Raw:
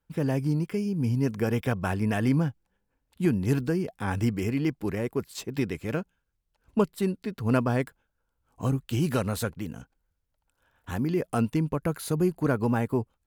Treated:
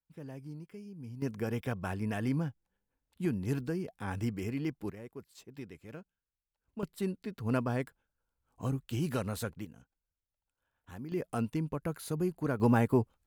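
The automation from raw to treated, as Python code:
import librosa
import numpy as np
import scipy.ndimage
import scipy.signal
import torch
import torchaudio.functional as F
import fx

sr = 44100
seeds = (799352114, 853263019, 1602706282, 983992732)

y = fx.gain(x, sr, db=fx.steps((0.0, -18.5), (1.22, -8.0), (4.9, -17.0), (6.83, -7.0), (9.65, -15.0), (11.12, -7.5), (12.6, 0.0)))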